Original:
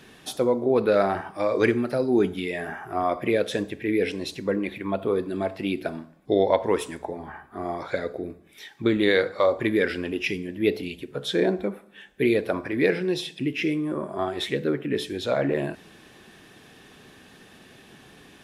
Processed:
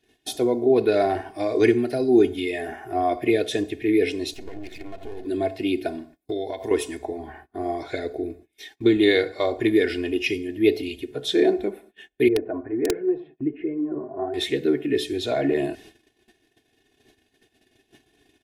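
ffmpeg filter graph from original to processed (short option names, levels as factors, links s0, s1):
-filter_complex "[0:a]asettb=1/sr,asplit=3[s0][s1][s2];[s0]atrim=end=4.334[s3];[s1]atrim=start=4.33:end=5.25,asetpts=PTS-STARTPTS,afade=t=in:d=0.004:c=qsin,afade=t=out:st=0.916:d=0.004:c=qsin,aeval=exprs='max(val(0),0)':c=same,acompressor=threshold=0.02:ratio=4:attack=3.2:release=140:knee=1:detection=peak[s4];[s2]atrim=start=5.246[s5];[s3][s4]acrossfade=d=0.004:c1=hsin:c2=qsin[s6];[s6][s5]acrossfade=d=0.004:c1=qsin:c2=hsin,asettb=1/sr,asplit=3[s7][s8][s9];[s7]atrim=end=6.164[s10];[s8]atrim=start=6.16:end=6.71,asetpts=PTS-STARTPTS,afade=t=in:d=0.004:c=qsin,afade=t=out:st=0.546:d=0.004:c=qsin,highpass=44,aemphasis=mode=production:type=50fm,acompressor=threshold=0.0398:ratio=4:attack=3.2:release=140:knee=1:detection=peak[s11];[s9]atrim=start=6.706[s12];[s10][s11]acrossfade=d=0.004:c1=hsin:c2=qsin[s13];[s13][s12]acrossfade=d=0.004:c1=qsin:c2=hsin,asettb=1/sr,asplit=3[s14][s15][s16];[s14]atrim=end=12.284[s17];[s15]atrim=start=12.28:end=14.34,asetpts=PTS-STARTPTS,afade=t=in:d=0.004:c=qsin,afade=t=out:st=2.056:d=0.004:c=qsin,lowpass=f=1400:w=0.5412,lowpass=f=1400:w=1.3066,flanger=delay=1.8:depth=5.9:regen=24:speed=1.4:shape=sinusoidal,aeval=exprs='(mod(6.31*val(0)+1,2)-1)/6.31':c=same[s18];[s16]atrim=start=14.336[s19];[s17][s18]acrossfade=d=0.004:c1=hsin:c2=qsin[s20];[s20][s19]acrossfade=d=0.004:c1=qsin:c2=hsin,equalizer=f=1200:t=o:w=0.57:g=-14.5,agate=range=0.0708:threshold=0.00398:ratio=16:detection=peak,aecho=1:1:2.8:0.77,volume=1.12"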